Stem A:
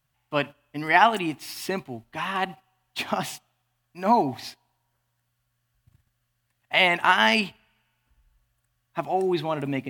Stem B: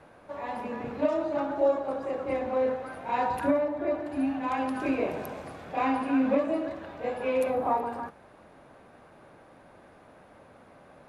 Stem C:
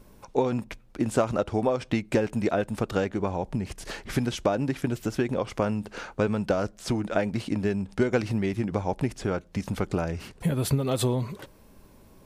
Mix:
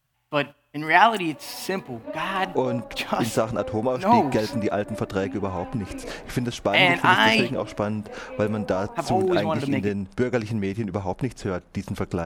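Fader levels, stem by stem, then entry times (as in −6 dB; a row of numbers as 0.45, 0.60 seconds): +1.5, −9.0, +0.5 decibels; 0.00, 1.05, 2.20 seconds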